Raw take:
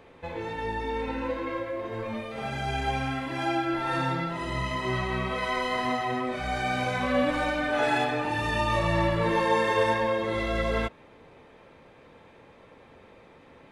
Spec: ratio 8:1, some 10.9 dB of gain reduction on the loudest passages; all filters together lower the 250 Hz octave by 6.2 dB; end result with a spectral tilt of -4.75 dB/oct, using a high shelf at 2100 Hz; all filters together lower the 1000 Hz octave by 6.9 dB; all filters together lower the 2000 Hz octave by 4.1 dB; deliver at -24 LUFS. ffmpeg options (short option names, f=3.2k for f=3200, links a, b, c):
-af "equalizer=f=250:t=o:g=-8,equalizer=f=1k:t=o:g=-8,equalizer=f=2k:t=o:g=-4.5,highshelf=f=2.1k:g=3.5,acompressor=threshold=-35dB:ratio=8,volume=15dB"